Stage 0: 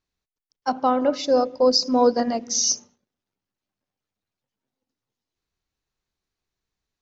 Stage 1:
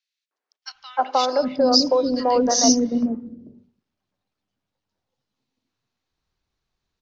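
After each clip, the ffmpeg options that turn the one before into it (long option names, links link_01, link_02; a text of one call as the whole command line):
ffmpeg -i in.wav -filter_complex "[0:a]lowpass=5000,acrossover=split=280|3000[link_01][link_02][link_03];[link_02]acompressor=threshold=-21dB:ratio=6[link_04];[link_01][link_04][link_03]amix=inputs=3:normalize=0,acrossover=split=390|2000[link_05][link_06][link_07];[link_06]adelay=310[link_08];[link_05]adelay=750[link_09];[link_09][link_08][link_07]amix=inputs=3:normalize=0,volume=6.5dB" out.wav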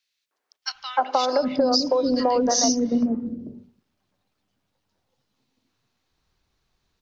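ffmpeg -i in.wav -af "acompressor=threshold=-25dB:ratio=6,volume=7dB" out.wav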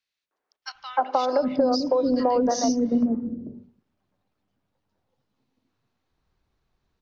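ffmpeg -i in.wav -af "highshelf=frequency=2500:gain=-11.5" out.wav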